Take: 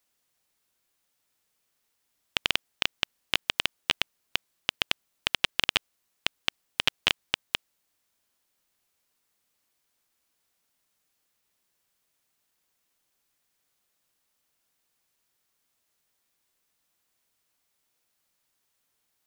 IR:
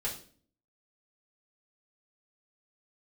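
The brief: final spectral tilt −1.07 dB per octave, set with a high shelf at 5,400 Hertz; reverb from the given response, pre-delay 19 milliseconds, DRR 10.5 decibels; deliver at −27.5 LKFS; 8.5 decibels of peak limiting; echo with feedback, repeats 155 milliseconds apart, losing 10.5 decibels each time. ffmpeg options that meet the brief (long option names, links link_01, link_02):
-filter_complex "[0:a]highshelf=frequency=5400:gain=-4,alimiter=limit=-11.5dB:level=0:latency=1,aecho=1:1:155|310|465:0.299|0.0896|0.0269,asplit=2[link_01][link_02];[1:a]atrim=start_sample=2205,adelay=19[link_03];[link_02][link_03]afir=irnorm=-1:irlink=0,volume=-14dB[link_04];[link_01][link_04]amix=inputs=2:normalize=0,volume=10.5dB"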